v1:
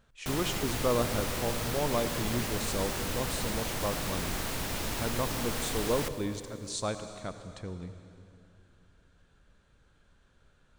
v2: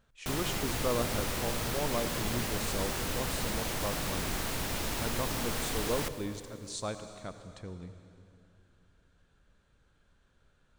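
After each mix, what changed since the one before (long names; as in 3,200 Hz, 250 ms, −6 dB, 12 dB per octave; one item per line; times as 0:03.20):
speech −3.5 dB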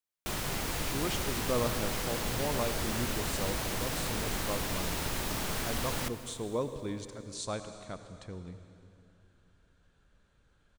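speech: entry +0.65 s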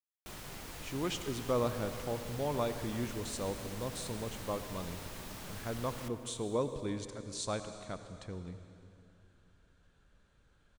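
background −12.0 dB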